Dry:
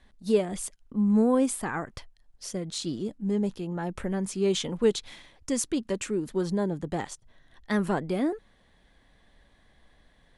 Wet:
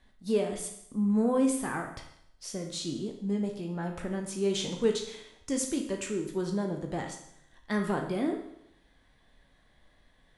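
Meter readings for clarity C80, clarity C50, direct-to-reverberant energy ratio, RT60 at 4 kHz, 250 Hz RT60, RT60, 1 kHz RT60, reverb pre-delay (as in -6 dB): 10.0 dB, 6.0 dB, 2.5 dB, 0.70 s, 0.75 s, 0.75 s, 0.70 s, 15 ms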